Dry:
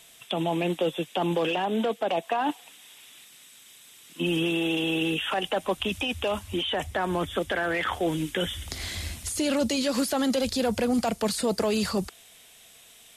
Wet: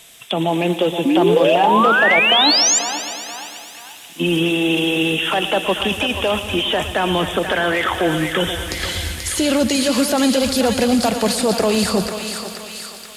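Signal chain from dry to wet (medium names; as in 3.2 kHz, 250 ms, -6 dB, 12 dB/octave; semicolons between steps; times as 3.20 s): thinning echo 484 ms, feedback 65%, high-pass 1.1 kHz, level -5 dB; painted sound rise, 1.05–2.79 s, 260–7500 Hz -23 dBFS; bit-crushed delay 115 ms, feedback 80%, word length 9-bit, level -14 dB; trim +8 dB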